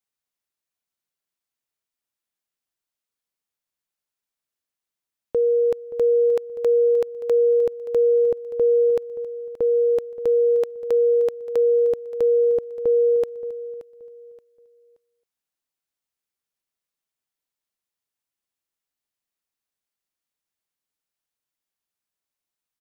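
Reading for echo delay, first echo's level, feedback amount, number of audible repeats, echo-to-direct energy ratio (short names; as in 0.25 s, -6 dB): 0.576 s, -16.0 dB, 29%, 2, -15.5 dB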